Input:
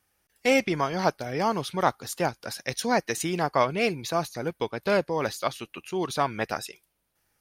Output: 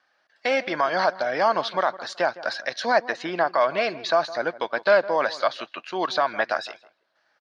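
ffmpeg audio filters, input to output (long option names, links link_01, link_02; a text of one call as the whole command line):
ffmpeg -i in.wav -filter_complex "[0:a]asettb=1/sr,asplit=3[link_01][link_02][link_03];[link_01]atrim=end=2.994[link_04];[link_02]atrim=start=2.99:end=3.47,asetpts=PTS-STARTPTS,afade=type=in:duration=0.004:curve=qsin,afade=type=out:start_time=0.476:duration=0.004:curve=qsin,aemphasis=mode=reproduction:type=75kf[link_05];[link_03]atrim=start=3.466[link_06];[link_04][link_05]acrossfade=duration=0.004:curve1=hsin:curve2=qsin[link_07];[link_07][link_06]acrossfade=duration=0.004:curve1=qsin:curve2=hsin,alimiter=limit=-18dB:level=0:latency=1:release=92,highpass=380,equalizer=frequency=420:width_type=q:width=4:gain=-7,equalizer=frequency=630:width_type=q:width=4:gain=9,equalizer=frequency=1100:width_type=q:width=4:gain=4,equalizer=frequency=1600:width_type=q:width=4:gain=9,equalizer=frequency=2500:width_type=q:width=4:gain=-3,equalizer=frequency=4300:width_type=q:width=4:gain=5,lowpass=frequency=4800:width=0.5412,lowpass=frequency=4800:width=1.3066,asplit=2[link_08][link_09];[link_09]adelay=160,lowpass=frequency=1500:poles=1,volume=-16dB,asplit=2[link_10][link_11];[link_11]adelay=160,lowpass=frequency=1500:poles=1,volume=0.24[link_12];[link_08][link_10][link_12]amix=inputs=3:normalize=0,volume=5dB" out.wav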